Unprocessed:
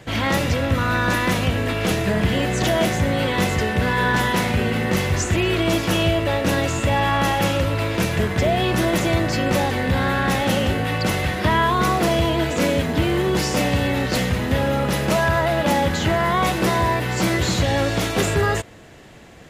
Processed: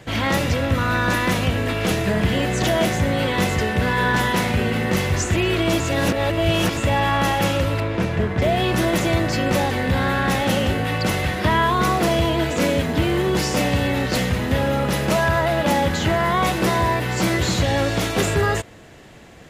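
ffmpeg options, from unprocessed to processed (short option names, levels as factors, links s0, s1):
-filter_complex "[0:a]asettb=1/sr,asplit=3[s0][s1][s2];[s0]atrim=end=7.804[s3];[s1]atrim=start=7.8:end=8.42,asetpts=PTS-STARTPTS,afade=t=in:d=0.004:c=qsin,afade=t=out:st=0.616:d=0.004:c=qsin,lowpass=f=1700:p=1[s4];[s2]atrim=start=8.416[s5];[s3][s4]acrossfade=d=0.004:c1=hsin:c2=qsin[s6];[s6][s5]acrossfade=d=0.004:c1=qsin:c2=hsin,asplit=3[s7][s8][s9];[s7]atrim=end=5.802[s10];[s8]atrim=start=5.798:end=6.772,asetpts=PTS-STARTPTS,areverse[s11];[s9]atrim=start=6.768[s12];[s10][s11]acrossfade=d=0.004:c1=hsin:c2=hsin[s13];[s13][s12]acrossfade=d=0.004:c1=hsin:c2=hsin"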